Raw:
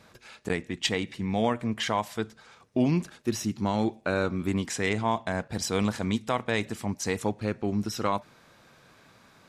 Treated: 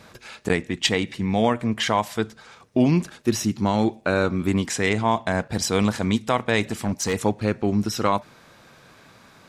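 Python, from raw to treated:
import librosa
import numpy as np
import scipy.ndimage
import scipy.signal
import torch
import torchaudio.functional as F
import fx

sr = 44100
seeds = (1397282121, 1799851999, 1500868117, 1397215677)

p1 = fx.rider(x, sr, range_db=10, speed_s=0.5)
p2 = x + (p1 * 10.0 ** (0.0 / 20.0))
y = fx.clip_hard(p2, sr, threshold_db=-18.5, at=(6.65, 7.14))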